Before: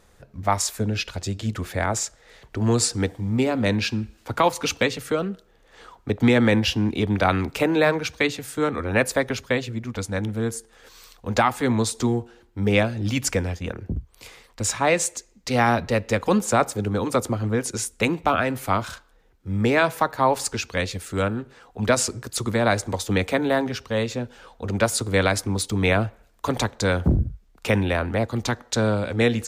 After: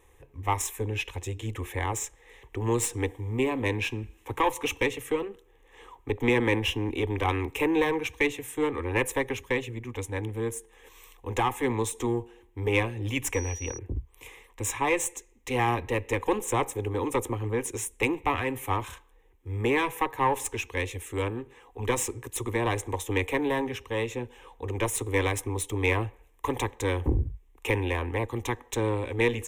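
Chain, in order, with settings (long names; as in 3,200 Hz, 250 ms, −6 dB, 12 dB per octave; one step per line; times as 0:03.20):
one-sided soft clipper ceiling −19 dBFS
phaser with its sweep stopped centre 950 Hz, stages 8
0:13.33–0:13.77: steady tone 5,800 Hz −38 dBFS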